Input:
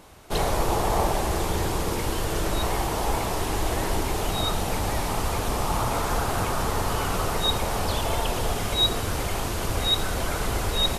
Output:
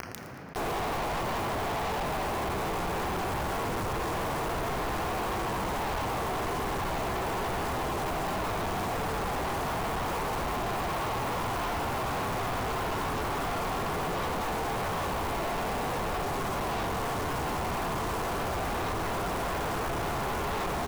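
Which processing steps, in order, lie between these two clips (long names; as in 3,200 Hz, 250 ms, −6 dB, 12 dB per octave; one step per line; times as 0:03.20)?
compressing power law on the bin magnitudes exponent 0.46
in parallel at −1 dB: speech leveller within 3 dB 0.5 s
on the sum: time stretch by phase vocoder 1.9×
low-pass with resonance 1,000 Hz, resonance Q 1.6
bit reduction 6 bits
repeating echo 114 ms, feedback 50%, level −23.5 dB
on a send at −6.5 dB: convolution reverb RT60 3.6 s, pre-delay 3 ms
on the sum: soft clipping −30 dBFS, distortion −6 dB
envelope flattener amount 70%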